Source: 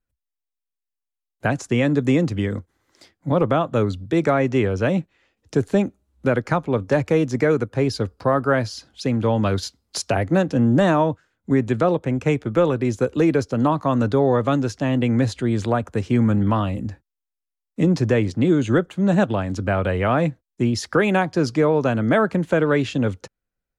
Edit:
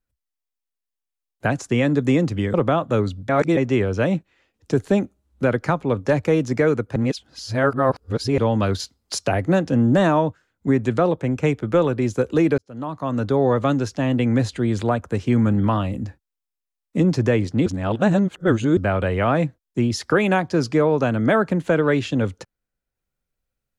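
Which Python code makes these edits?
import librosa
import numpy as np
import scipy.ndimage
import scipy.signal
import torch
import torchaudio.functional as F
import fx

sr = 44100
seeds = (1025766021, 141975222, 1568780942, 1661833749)

y = fx.edit(x, sr, fx.cut(start_s=2.54, length_s=0.83),
    fx.reverse_span(start_s=4.12, length_s=0.28),
    fx.reverse_span(start_s=7.79, length_s=1.42),
    fx.fade_in_span(start_s=13.41, length_s=0.88),
    fx.reverse_span(start_s=18.49, length_s=1.11), tone=tone)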